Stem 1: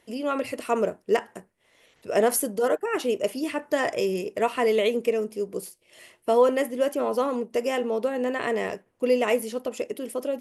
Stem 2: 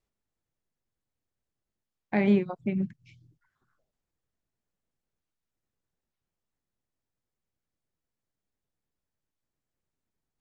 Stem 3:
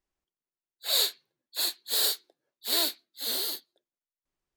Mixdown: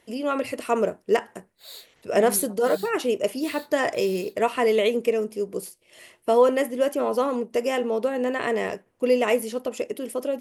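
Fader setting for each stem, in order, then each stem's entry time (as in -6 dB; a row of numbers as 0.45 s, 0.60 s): +1.5 dB, -13.0 dB, -18.0 dB; 0.00 s, 0.00 s, 0.75 s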